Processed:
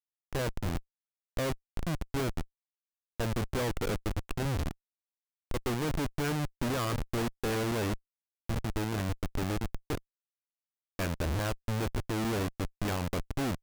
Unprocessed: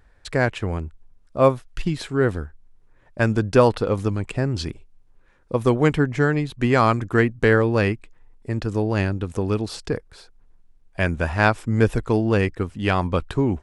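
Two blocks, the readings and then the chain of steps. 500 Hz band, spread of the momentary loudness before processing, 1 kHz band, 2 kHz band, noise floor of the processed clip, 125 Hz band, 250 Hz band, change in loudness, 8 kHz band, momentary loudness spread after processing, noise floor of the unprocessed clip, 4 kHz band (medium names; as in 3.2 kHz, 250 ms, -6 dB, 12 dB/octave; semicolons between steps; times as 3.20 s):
-14.5 dB, 11 LU, -12.5 dB, -14.0 dB, under -85 dBFS, -11.0 dB, -11.5 dB, -12.5 dB, +0.5 dB, 7 LU, -56 dBFS, -5.0 dB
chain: Schmitt trigger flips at -23 dBFS; upward expansion 1.5:1, over -34 dBFS; trim -7 dB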